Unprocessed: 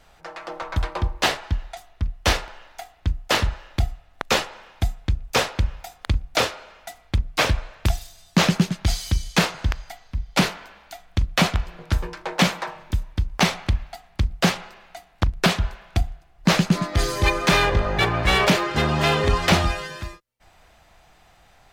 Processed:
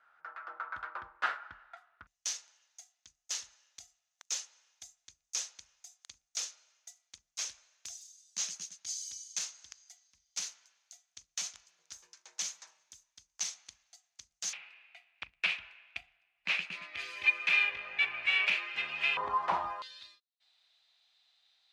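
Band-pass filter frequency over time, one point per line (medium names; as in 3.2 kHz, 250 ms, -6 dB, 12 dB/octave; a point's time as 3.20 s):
band-pass filter, Q 6.5
1.4 kHz
from 2.07 s 6.4 kHz
from 14.53 s 2.5 kHz
from 19.17 s 980 Hz
from 19.82 s 3.9 kHz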